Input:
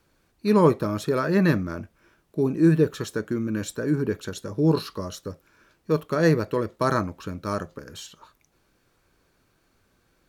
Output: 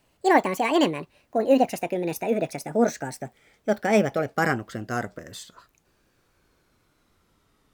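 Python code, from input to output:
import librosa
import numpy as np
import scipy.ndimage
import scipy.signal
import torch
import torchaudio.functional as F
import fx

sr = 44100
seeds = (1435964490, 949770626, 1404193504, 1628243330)

y = fx.speed_glide(x, sr, from_pct=185, to_pct=81)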